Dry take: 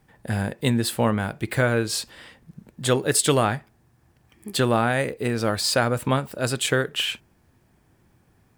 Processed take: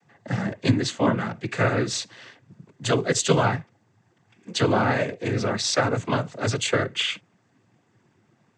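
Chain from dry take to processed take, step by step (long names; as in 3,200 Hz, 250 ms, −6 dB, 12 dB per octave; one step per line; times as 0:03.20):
cochlear-implant simulation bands 16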